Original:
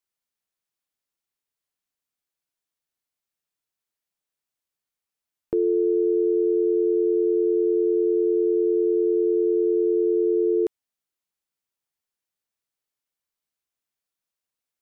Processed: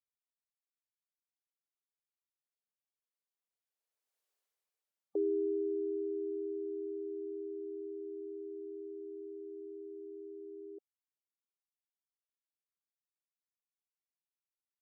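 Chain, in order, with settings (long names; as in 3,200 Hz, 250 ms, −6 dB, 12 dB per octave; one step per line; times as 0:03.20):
source passing by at 0:04.30, 33 m/s, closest 8 metres
four-pole ladder high-pass 370 Hz, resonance 40%
gate on every frequency bin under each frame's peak −30 dB strong
level +8.5 dB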